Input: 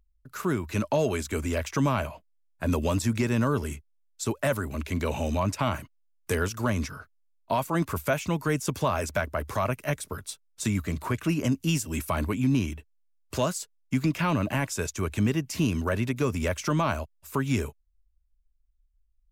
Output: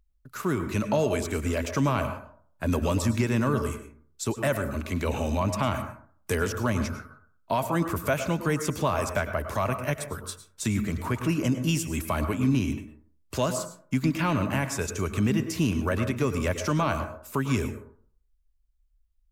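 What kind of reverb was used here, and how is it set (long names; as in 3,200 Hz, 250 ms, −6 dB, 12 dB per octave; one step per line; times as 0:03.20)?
dense smooth reverb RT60 0.52 s, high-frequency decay 0.35×, pre-delay 90 ms, DRR 8.5 dB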